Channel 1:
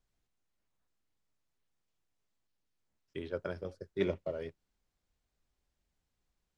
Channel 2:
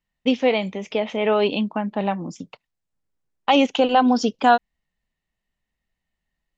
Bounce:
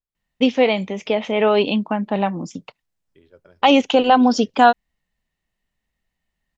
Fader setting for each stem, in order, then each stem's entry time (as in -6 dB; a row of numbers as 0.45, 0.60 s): -13.0, +3.0 dB; 0.00, 0.15 s